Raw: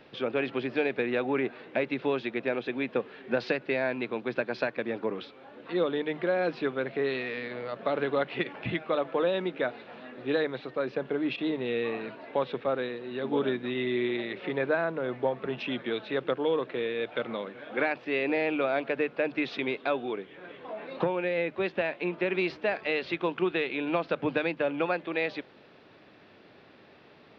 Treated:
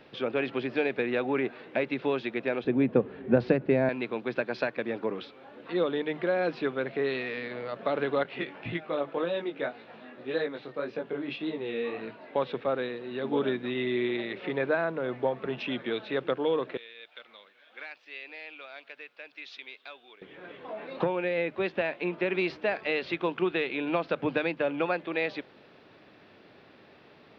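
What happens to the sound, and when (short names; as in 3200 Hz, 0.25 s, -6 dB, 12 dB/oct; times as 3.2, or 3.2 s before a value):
2.64–3.89 tilt -4.5 dB/oct
8.23–12.36 chorus 1.8 Hz, delay 17.5 ms, depth 3.9 ms
16.77–20.22 differentiator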